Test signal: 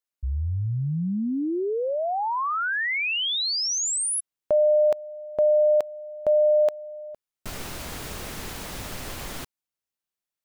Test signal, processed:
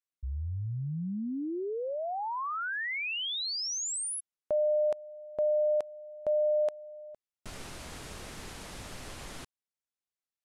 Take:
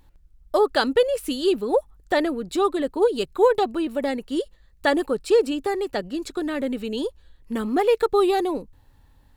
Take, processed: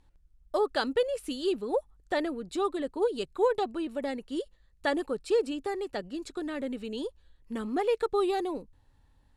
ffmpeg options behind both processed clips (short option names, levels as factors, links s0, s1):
-af "lowpass=f=11000:w=0.5412,lowpass=f=11000:w=1.3066,volume=0.398"